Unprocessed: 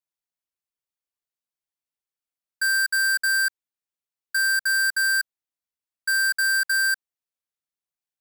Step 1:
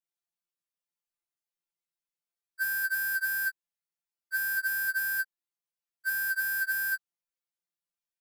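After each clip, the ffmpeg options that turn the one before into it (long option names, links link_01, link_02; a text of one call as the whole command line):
ffmpeg -i in.wav -af "afftfilt=real='re*2.83*eq(mod(b,8),0)':imag='im*2.83*eq(mod(b,8),0)':win_size=2048:overlap=0.75,volume=-2dB" out.wav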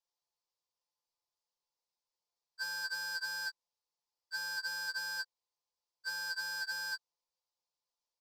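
ffmpeg -i in.wav -af "firequalizer=gain_entry='entry(120,0);entry(230,-14);entry(460,7);entry(670,3);entry(950,11);entry(1500,-10);entry(4800,8);entry(12000,-19)':delay=0.05:min_phase=1" out.wav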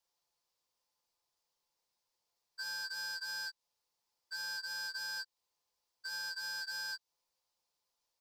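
ffmpeg -i in.wav -filter_complex "[0:a]acrossover=split=2600|5500[link_01][link_02][link_03];[link_01]acompressor=threshold=-49dB:ratio=4[link_04];[link_02]acompressor=threshold=-48dB:ratio=4[link_05];[link_03]acompressor=threshold=-55dB:ratio=4[link_06];[link_04][link_05][link_06]amix=inputs=3:normalize=0,alimiter=level_in=15.5dB:limit=-24dB:level=0:latency=1:release=62,volume=-15.5dB,volume=6.5dB" out.wav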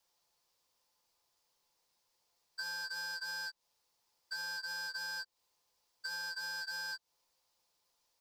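ffmpeg -i in.wav -filter_complex "[0:a]acrossover=split=1000|3300[link_01][link_02][link_03];[link_01]acompressor=threshold=-56dB:ratio=4[link_04];[link_02]acompressor=threshold=-51dB:ratio=4[link_05];[link_03]acompressor=threshold=-52dB:ratio=4[link_06];[link_04][link_05][link_06]amix=inputs=3:normalize=0,volume=6.5dB" out.wav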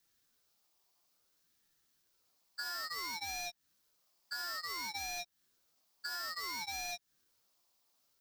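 ffmpeg -i in.wav -af "highshelf=frequency=12000:gain=9.5,aeval=exprs='val(0)*sin(2*PI*490*n/s+490*0.75/0.58*sin(2*PI*0.58*n/s))':channel_layout=same,volume=2.5dB" out.wav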